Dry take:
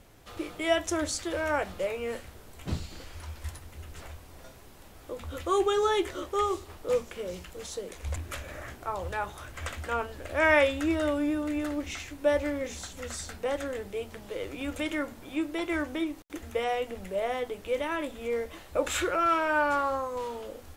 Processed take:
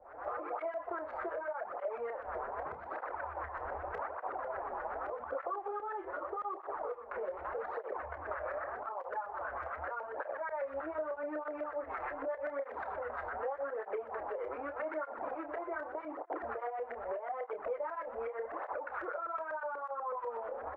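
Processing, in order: median filter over 15 samples; recorder AGC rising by 62 dB/s; three-band isolator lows -22 dB, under 470 Hz, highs -17 dB, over 2.5 kHz; LFO low-pass saw up 8.1 Hz 560–1700 Hz; peak limiter -23.5 dBFS, peak gain reduction 13.5 dB; peaking EQ 150 Hz -11 dB 1.7 oct; de-hum 346 Hz, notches 35; compression, threshold -42 dBFS, peak gain reduction 13.5 dB; doubling 29 ms -9 dB; cancelling through-zero flanger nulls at 0.83 Hz, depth 7.4 ms; trim +7.5 dB

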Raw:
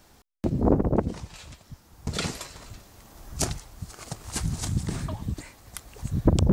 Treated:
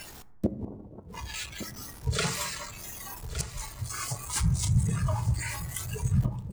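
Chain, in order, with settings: jump at every zero crossing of -26 dBFS; spectral noise reduction 16 dB; dynamic bell 4.3 kHz, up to -4 dB, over -44 dBFS, Q 0.72; inverted gate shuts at -15 dBFS, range -26 dB; delay 1164 ms -13 dB; on a send at -12 dB: reverberation RT60 1.0 s, pre-delay 4 ms

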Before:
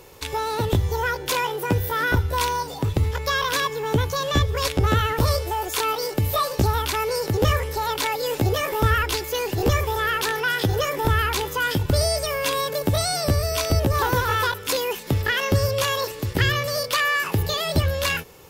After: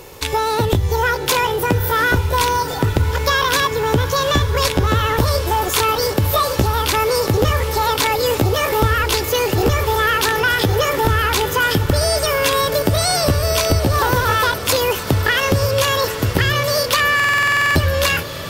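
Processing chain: compression, threshold -21 dBFS, peak gain reduction 7.5 dB; on a send: echo that smears into a reverb 815 ms, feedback 71%, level -14 dB; on the sum: buffer glitch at 17.15 s, samples 2048, times 12; trim +8.5 dB

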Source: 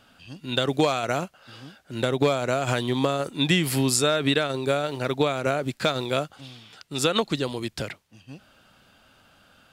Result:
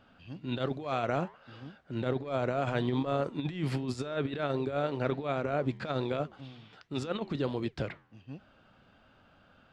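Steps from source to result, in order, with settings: compressor with a negative ratio -25 dBFS, ratio -0.5; flange 1.3 Hz, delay 3 ms, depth 9.6 ms, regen -87%; tape spacing loss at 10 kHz 27 dB; trim +1 dB

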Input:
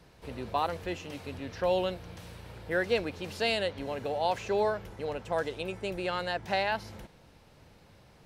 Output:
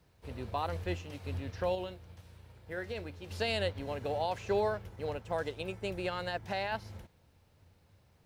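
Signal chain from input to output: peaking EQ 87 Hz +11.5 dB 0.67 oct; peak limiter -21.5 dBFS, peak gain reduction 6.5 dB; 1.75–3.31 s: feedback comb 72 Hz, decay 0.23 s, harmonics all, mix 60%; word length cut 12-bit, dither triangular; upward expansion 1.5:1, over -50 dBFS

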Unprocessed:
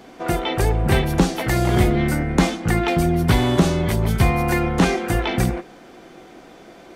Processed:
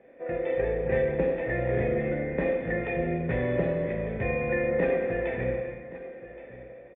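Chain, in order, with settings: level rider gain up to 3 dB; cascade formant filter e; delay 1123 ms -16.5 dB; reverberation, pre-delay 3 ms, DRR 0 dB

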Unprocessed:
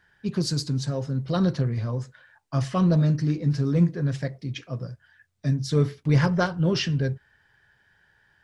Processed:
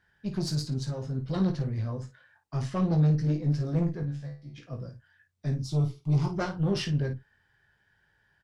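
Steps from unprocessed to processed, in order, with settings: bass shelf 330 Hz +3.5 dB; valve stage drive 16 dB, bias 0.6; 4.03–4.58 s: feedback comb 72 Hz, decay 0.35 s, harmonics all, mix 100%; 5.62–6.38 s: static phaser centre 340 Hz, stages 8; early reflections 20 ms -6.5 dB, 53 ms -10 dB; trim -4.5 dB

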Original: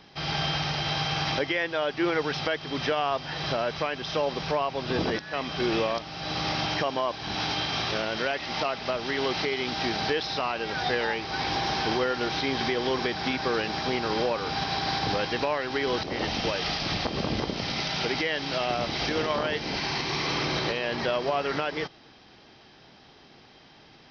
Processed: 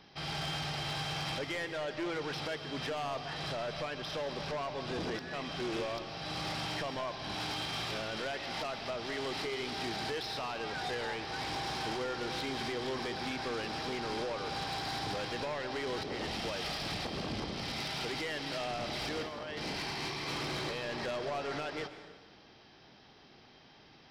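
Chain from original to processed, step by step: 19.22–20.28 s: compressor with a negative ratio -31 dBFS, ratio -0.5; saturation -27 dBFS, distortion -11 dB; plate-style reverb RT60 1.3 s, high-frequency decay 0.7×, pre-delay 115 ms, DRR 10 dB; trim -5.5 dB

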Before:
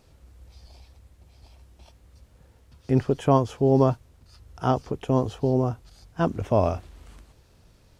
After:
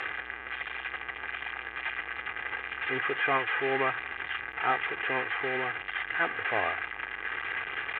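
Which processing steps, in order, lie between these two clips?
one-bit delta coder 16 kbps, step -25.5 dBFS; band-pass filter 1.8 kHz, Q 3; comb 2.5 ms, depth 57%; trim +9 dB

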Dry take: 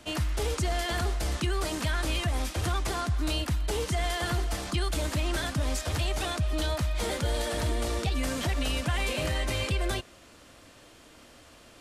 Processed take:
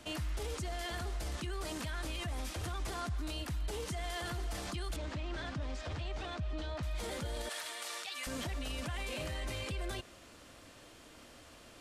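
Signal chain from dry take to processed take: 7.49–8.27 s: high-pass 1.2 kHz 12 dB/octave; peak limiter -28.5 dBFS, peak gain reduction 10 dB; 4.96–6.83 s: distance through air 130 m; trim -2.5 dB

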